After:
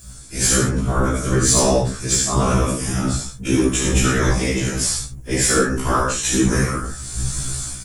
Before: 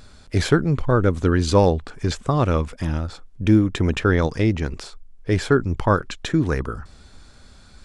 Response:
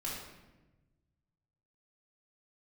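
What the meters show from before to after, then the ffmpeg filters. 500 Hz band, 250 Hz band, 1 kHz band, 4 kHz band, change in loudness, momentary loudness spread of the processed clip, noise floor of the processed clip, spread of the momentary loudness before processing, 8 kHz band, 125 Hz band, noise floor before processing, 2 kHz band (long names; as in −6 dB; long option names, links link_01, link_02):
0.0 dB, +0.5 dB, +2.5 dB, +8.0 dB, +2.0 dB, 9 LU, −36 dBFS, 10 LU, +21.0 dB, 0.0 dB, −48 dBFS, +4.0 dB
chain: -filter_complex "[0:a]equalizer=frequency=4700:width=1.5:gain=2.5,aecho=1:1:72:0.631[link_01];[1:a]atrim=start_sample=2205,atrim=end_sample=6174[link_02];[link_01][link_02]afir=irnorm=-1:irlink=0,dynaudnorm=framelen=120:gausssize=7:maxgain=15.5dB,aexciter=amount=8.3:drive=5.9:freq=6200,afftfilt=real='hypot(re,im)*cos(2*PI*random(0))':imag='hypot(re,im)*sin(2*PI*random(1))':win_size=512:overlap=0.75,tiltshelf=frequency=1300:gain=-3.5,acontrast=63,afftfilt=real='re*1.73*eq(mod(b,3),0)':imag='im*1.73*eq(mod(b,3),0)':win_size=2048:overlap=0.75"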